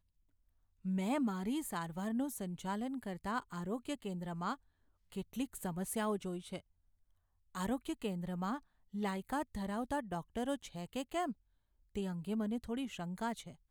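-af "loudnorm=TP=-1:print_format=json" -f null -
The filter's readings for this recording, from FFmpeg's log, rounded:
"input_i" : "-40.0",
"input_tp" : "-25.0",
"input_lra" : "2.3",
"input_thresh" : "-50.1",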